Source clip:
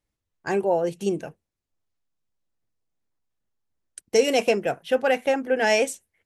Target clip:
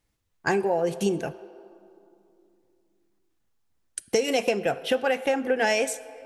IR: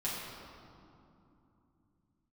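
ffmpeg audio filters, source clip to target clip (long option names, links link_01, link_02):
-filter_complex "[0:a]acompressor=threshold=-27dB:ratio=6,bandreject=frequency=590:width=14,asplit=2[link_01][link_02];[link_02]highpass=frequency=350:width=0.5412,highpass=frequency=350:width=1.3066[link_03];[1:a]atrim=start_sample=2205[link_04];[link_03][link_04]afir=irnorm=-1:irlink=0,volume=-17dB[link_05];[link_01][link_05]amix=inputs=2:normalize=0,volume=6.5dB"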